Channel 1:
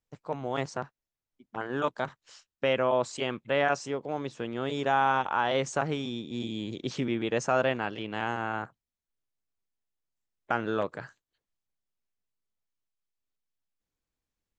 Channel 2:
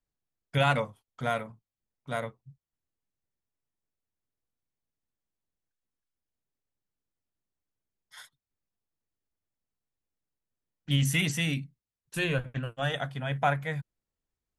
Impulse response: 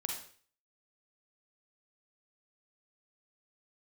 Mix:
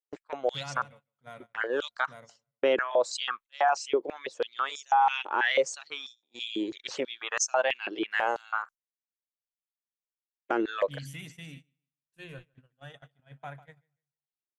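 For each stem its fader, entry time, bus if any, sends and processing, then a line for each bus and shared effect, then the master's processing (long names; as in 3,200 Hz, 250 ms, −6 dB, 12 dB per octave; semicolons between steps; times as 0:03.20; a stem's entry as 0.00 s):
+2.5 dB, 0.00 s, no send, no echo send, reverb reduction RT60 1.3 s; high-pass on a step sequencer 6.1 Hz 350–6,000 Hz
−16.5 dB, 0.00 s, no send, echo send −11.5 dB, no processing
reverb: not used
echo: repeating echo 152 ms, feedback 24%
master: noise gate −46 dBFS, range −21 dB; brickwall limiter −15 dBFS, peak gain reduction 10 dB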